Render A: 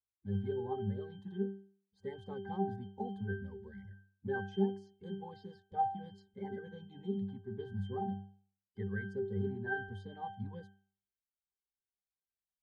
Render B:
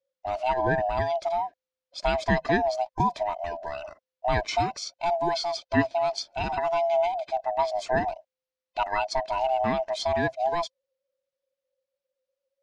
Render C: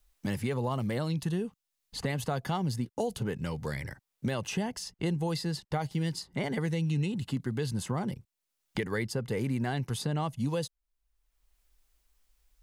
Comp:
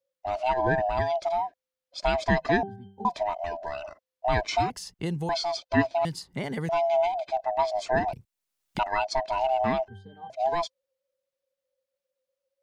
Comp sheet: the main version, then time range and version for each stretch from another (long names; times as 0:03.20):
B
0:02.63–0:03.05: punch in from A
0:04.70–0:05.29: punch in from C
0:06.05–0:06.69: punch in from C
0:08.13–0:08.79: punch in from C
0:09.88–0:10.30: punch in from A